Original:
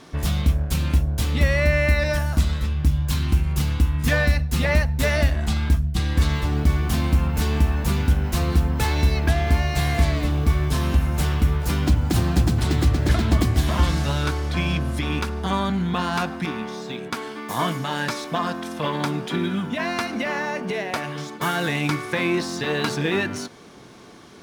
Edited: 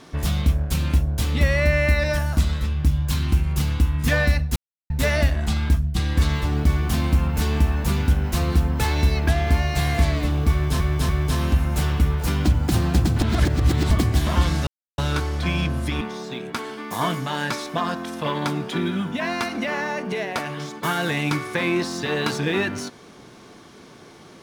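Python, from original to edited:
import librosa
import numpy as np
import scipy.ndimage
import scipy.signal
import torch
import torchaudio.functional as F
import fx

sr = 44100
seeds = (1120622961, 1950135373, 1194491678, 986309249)

y = fx.edit(x, sr, fx.silence(start_s=4.56, length_s=0.34),
    fx.repeat(start_s=10.51, length_s=0.29, count=3),
    fx.reverse_span(start_s=12.63, length_s=0.7),
    fx.insert_silence(at_s=14.09, length_s=0.31),
    fx.cut(start_s=15.12, length_s=1.47), tone=tone)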